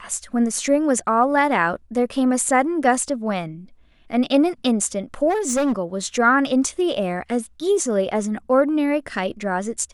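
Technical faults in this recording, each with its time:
5.29–5.73 s: clipped -16.5 dBFS

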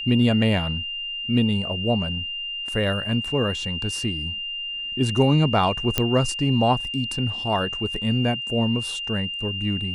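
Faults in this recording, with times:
whine 2.8 kHz -28 dBFS
5.98 s: pop -5 dBFS

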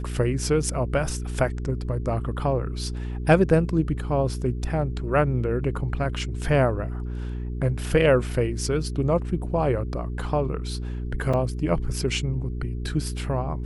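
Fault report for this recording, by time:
hum 60 Hz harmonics 7 -30 dBFS
11.33–11.34 s: dropout 5.5 ms

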